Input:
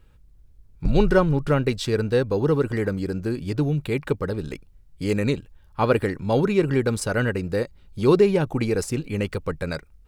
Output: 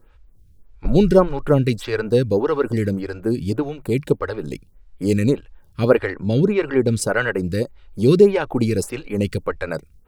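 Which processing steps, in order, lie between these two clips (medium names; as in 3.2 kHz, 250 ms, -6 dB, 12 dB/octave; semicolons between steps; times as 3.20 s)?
5.98–7.00 s: treble shelf 7.1 kHz -11.5 dB; lamp-driven phase shifter 1.7 Hz; trim +6.5 dB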